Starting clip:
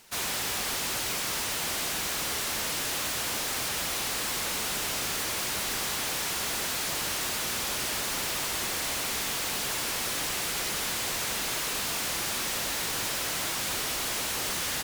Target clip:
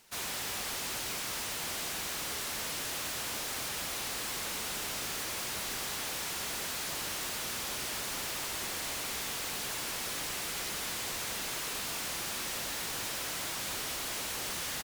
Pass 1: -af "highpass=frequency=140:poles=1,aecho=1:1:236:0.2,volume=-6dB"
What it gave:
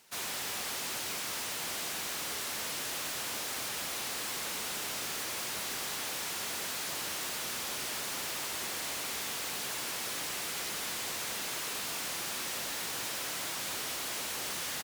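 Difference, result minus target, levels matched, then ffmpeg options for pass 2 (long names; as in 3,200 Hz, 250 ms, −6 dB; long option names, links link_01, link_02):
125 Hz band −3.5 dB
-af "aecho=1:1:236:0.2,volume=-6dB"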